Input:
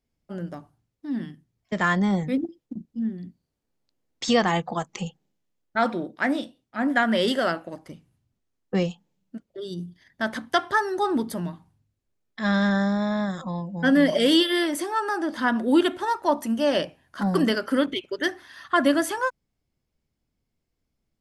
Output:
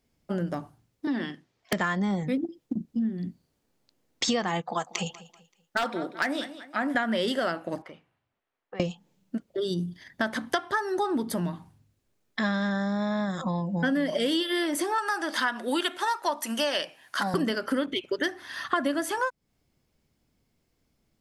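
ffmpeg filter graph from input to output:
-filter_complex "[0:a]asettb=1/sr,asplit=3[s0][s1][s2];[s0]atrim=end=1.074[s3];[s1]atrim=start=1.07:end=1.73,asetpts=PTS-STARTPTS,afade=t=in:d=0.004:c=qsin,afade=t=out:st=0.656:d=0.004:c=qsin,acrossover=split=350 6100:gain=0.141 1 0.158[s4][s5][s6];[s4][s5][s6]amix=inputs=3:normalize=0,acontrast=35,aeval=exprs='(mod(11.9*val(0)+1,2)-1)/11.9':c=same[s7];[s2]atrim=start=1.726[s8];[s3][s7]acrossfade=d=0.004:c1=hsin:c2=qsin[s9];[s9][s8]acrossfade=d=0.004:c1=qsin:c2=hsin,asettb=1/sr,asplit=3[s10][s11][s12];[s10]atrim=end=4.614[s13];[s11]atrim=start=4.61:end=6.95,asetpts=PTS-STARTPTS,afade=t=in:d=0.004:c=qsin,afade=t=out:st=2.336:d=0.004:c=qsin,lowshelf=f=390:g=-10.5,aecho=1:1:192|384|576:0.1|0.033|0.0109,atrim=end_sample=103194,aeval=exprs='0.133*(abs(mod(val(0)/0.133+3,4)-2)-1)':c=same[s14];[s12]atrim=start=6.946[s15];[s13][s14]acrossfade=d=0.004:c1=hsin:c2=qsin[s16];[s16][s15]acrossfade=d=0.004:c1=qsin:c2=hsin,asettb=1/sr,asplit=3[s17][s18][s19];[s17]atrim=end=7.824[s20];[s18]atrim=start=7.82:end=8.8,asetpts=PTS-STARTPTS,afade=t=in:d=0.004:c=qsin,afade=t=out:st=0.976:d=0.004:c=qsin,acrossover=split=490 3100:gain=0.126 1 0.0794[s21][s22][s23];[s21][s22][s23]amix=inputs=3:normalize=0,acompressor=threshold=0.00447:ratio=6:attack=3.2:release=140:knee=1:detection=peak[s24];[s19]atrim=start=8.796[s25];[s20][s24]acrossfade=d=0.004:c1=hsin:c2=qsin[s26];[s26][s25]acrossfade=d=0.004:c1=qsin:c2=hsin,asettb=1/sr,asplit=3[s27][s28][s29];[s27]atrim=end=14.984[s30];[s28]atrim=start=14.98:end=17.34,asetpts=PTS-STARTPTS,afade=t=in:d=0.004:c=qsin,afade=t=out:st=2.356:d=0.004:c=qsin,highpass=f=340:p=1,tiltshelf=f=790:g=-6.5[s31];[s29]atrim=start=17.336[s32];[s30][s31]acrossfade=d=0.004:c1=hsin:c2=qsin[s33];[s33][s32]acrossfade=d=0.004:c1=qsin:c2=hsin,lowshelf=f=73:g=-7,acompressor=threshold=0.02:ratio=5,volume=2.66"

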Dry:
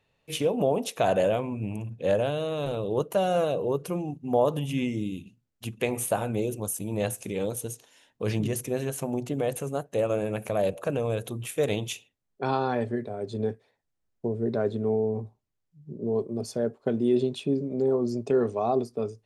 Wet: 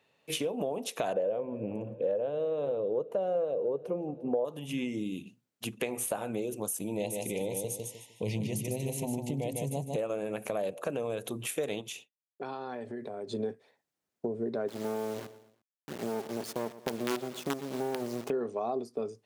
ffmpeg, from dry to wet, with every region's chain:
-filter_complex "[0:a]asettb=1/sr,asplit=3[s0][s1][s2];[s0]atrim=end=1.134[s3];[s1]atrim=start=1.13:end=4.45,asetpts=PTS-STARTPTS,afade=t=in:d=0.004:c=qsin,afade=t=out:st=3.316:d=0.004:c=qsin,lowpass=f=1000:p=1,equalizer=f=500:t=o:w=0.51:g=11.5,aecho=1:1:175|350|525|700:0.0668|0.0401|0.0241|0.0144,atrim=end_sample=146412[s4];[s2]atrim=start=4.446[s5];[s3][s4]acrossfade=d=0.004:c1=hsin:c2=qsin[s6];[s6][s5]acrossfade=d=0.004:c1=qsin:c2=hsin,asettb=1/sr,asplit=3[s7][s8][s9];[s7]atrim=end=6.844[s10];[s8]atrim=start=6.84:end=9.96,asetpts=PTS-STARTPTS,afade=t=in:d=0.004:c=qsin,afade=t=out:st=3.116:d=0.004:c=qsin,asubboost=boost=11.5:cutoff=130,asuperstop=centerf=1400:order=12:qfactor=1.5,aecho=1:1:152|304|456:0.531|0.138|0.0359,atrim=end_sample=137592[s11];[s9]atrim=start=9.956[s12];[s10][s11]acrossfade=d=0.004:c1=hsin:c2=qsin[s13];[s13][s12]acrossfade=d=0.004:c1=qsin:c2=hsin,asettb=1/sr,asplit=3[s14][s15][s16];[s14]atrim=end=11.814[s17];[s15]atrim=start=11.81:end=13.31,asetpts=PTS-STARTPTS,afade=t=in:d=0.004:c=qsin,afade=t=out:st=1.496:d=0.004:c=qsin,agate=range=0.0224:threshold=0.00224:ratio=3:release=100:detection=peak,acompressor=threshold=0.0141:ratio=6:attack=3.2:release=140:knee=1:detection=peak[s18];[s16]atrim=start=13.306[s19];[s17][s18]acrossfade=d=0.004:c1=hsin:c2=qsin[s20];[s20][s19]acrossfade=d=0.004:c1=qsin:c2=hsin,asettb=1/sr,asplit=3[s21][s22][s23];[s21]atrim=end=14.684[s24];[s22]atrim=start=14.68:end=18.3,asetpts=PTS-STARTPTS,afade=t=in:d=0.004:c=qsin,afade=t=out:st=3.616:d=0.004:c=qsin,acrusher=bits=4:dc=4:mix=0:aa=0.000001,aecho=1:1:117|234|351:0.112|0.0494|0.0217,atrim=end_sample=159642[s25];[s23]atrim=start=18.296[s26];[s24][s25]acrossfade=d=0.004:c1=hsin:c2=qsin[s27];[s27][s26]acrossfade=d=0.004:c1=qsin:c2=hsin,highpass=200,acompressor=threshold=0.02:ratio=4,volume=1.41"

